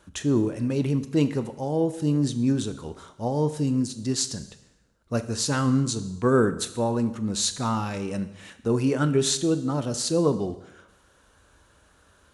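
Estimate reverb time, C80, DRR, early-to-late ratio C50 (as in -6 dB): 0.85 s, 15.0 dB, 11.0 dB, 13.5 dB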